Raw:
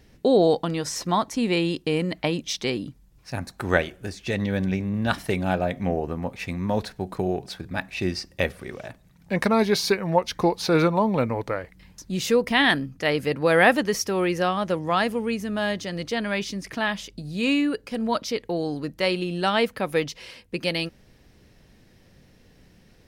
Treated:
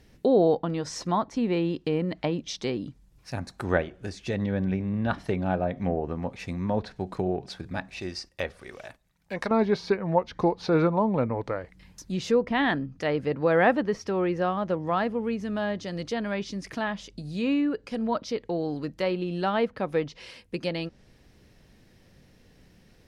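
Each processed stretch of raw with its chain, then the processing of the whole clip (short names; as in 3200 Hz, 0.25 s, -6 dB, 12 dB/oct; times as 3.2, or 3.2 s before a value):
8–9.51 gate -51 dBFS, range -7 dB + bell 160 Hz -10 dB 2.8 oct
whole clip: treble ducked by the level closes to 2600 Hz, closed at -20.5 dBFS; dynamic EQ 2400 Hz, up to -6 dB, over -41 dBFS, Q 0.95; gain -2 dB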